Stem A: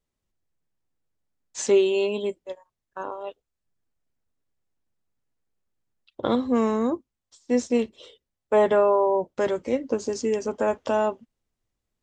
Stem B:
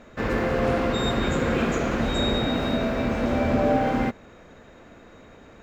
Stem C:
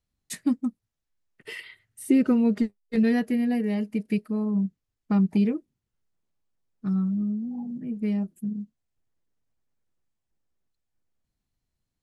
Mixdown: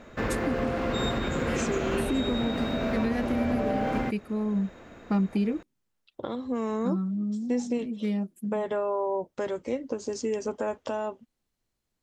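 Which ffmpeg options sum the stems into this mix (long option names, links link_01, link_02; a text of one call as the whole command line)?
ffmpeg -i stem1.wav -i stem2.wav -i stem3.wav -filter_complex "[0:a]acompressor=threshold=-22dB:ratio=6,volume=-2dB[link_01];[1:a]volume=0dB[link_02];[2:a]highpass=220,volume=1.5dB[link_03];[link_01][link_02][link_03]amix=inputs=3:normalize=0,alimiter=limit=-18dB:level=0:latency=1:release=465" out.wav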